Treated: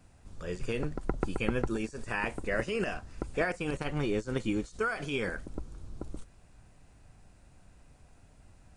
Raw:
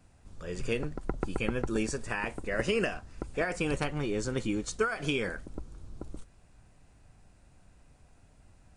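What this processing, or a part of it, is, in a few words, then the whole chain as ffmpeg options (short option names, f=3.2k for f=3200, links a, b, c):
de-esser from a sidechain: -filter_complex "[0:a]asplit=2[a][b];[b]highpass=f=6.4k:w=0.5412,highpass=f=6.4k:w=1.3066,apad=whole_len=386532[c];[a][c]sidechaincompress=threshold=-56dB:ratio=10:attack=3.8:release=35,volume=1.5dB"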